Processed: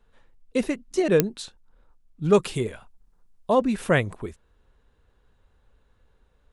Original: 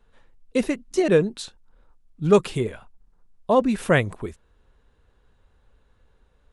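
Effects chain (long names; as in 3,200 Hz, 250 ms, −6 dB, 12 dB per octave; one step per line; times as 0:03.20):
0:02.42–0:03.56: high-shelf EQ 4,100 Hz +6 dB
digital clicks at 0:01.20, −1 dBFS
level −2 dB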